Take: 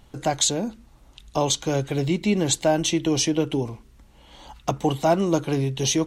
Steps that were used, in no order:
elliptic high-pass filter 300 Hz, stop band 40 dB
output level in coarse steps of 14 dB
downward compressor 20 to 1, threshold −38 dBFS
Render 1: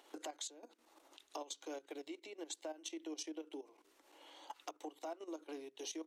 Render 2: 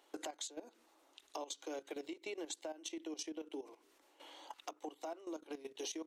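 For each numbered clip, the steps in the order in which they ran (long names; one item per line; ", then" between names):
downward compressor, then output level in coarse steps, then elliptic high-pass filter
elliptic high-pass filter, then downward compressor, then output level in coarse steps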